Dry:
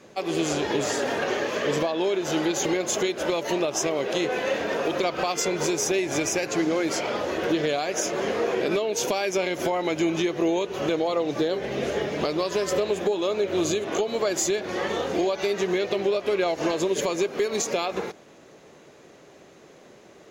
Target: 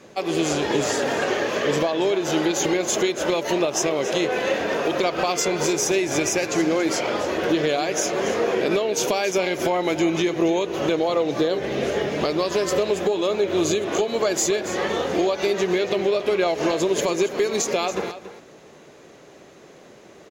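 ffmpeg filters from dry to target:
ffmpeg -i in.wav -af "aecho=1:1:281:0.224,volume=3dB" out.wav

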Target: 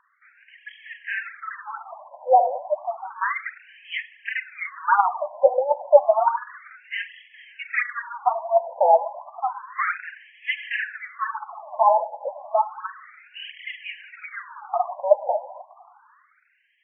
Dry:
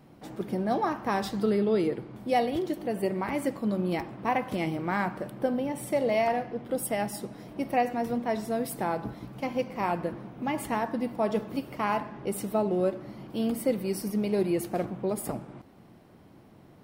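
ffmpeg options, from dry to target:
ffmpeg -i in.wav -filter_complex "[0:a]asettb=1/sr,asplit=3[link_01][link_02][link_03];[link_01]atrim=end=4.654[link_04];[link_02]atrim=start=4.65:end=6.7,asetpts=PTS-STARTPTS,afade=type=in:duration=0.004:curve=qsin,afade=type=out:start_time=2.046:duration=0.004:curve=qsin,acontrast=89[link_05];[link_03]atrim=start=6.696[link_06];[link_04][link_05]acrossfade=duration=0.004:curve1=hsin:curve2=qsin[link_07];[link_07][link_06]acrossfade=duration=0.004:curve1=qsin:curve2=hsin,aphaser=in_gain=1:out_gain=1:delay=4.9:decay=0.62:speed=1.4:type=triangular,dynaudnorm=framelen=100:gausssize=17:maxgain=11.5dB,afftfilt=real='re*between(b*sr/1024,700*pow(2400/700,0.5+0.5*sin(2*PI*0.31*pts/sr))/1.41,700*pow(2400/700,0.5+0.5*sin(2*PI*0.31*pts/sr))*1.41)':imag='im*between(b*sr/1024,700*pow(2400/700,0.5+0.5*sin(2*PI*0.31*pts/sr))/1.41,700*pow(2400/700,0.5+0.5*sin(2*PI*0.31*pts/sr))*1.41)':win_size=1024:overlap=0.75,volume=3dB" out.wav

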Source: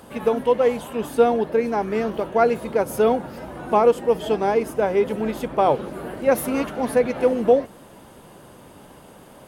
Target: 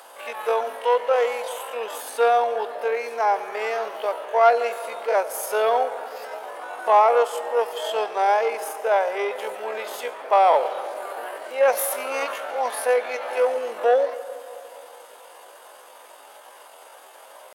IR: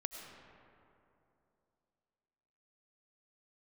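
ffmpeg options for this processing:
-filter_complex "[0:a]acontrast=60,atempo=0.54,highpass=frequency=580:width=0.5412,highpass=frequency=580:width=1.3066,asplit=2[link_01][link_02];[1:a]atrim=start_sample=2205[link_03];[link_02][link_03]afir=irnorm=-1:irlink=0,volume=-4.5dB[link_04];[link_01][link_04]amix=inputs=2:normalize=0,volume=-5.5dB"

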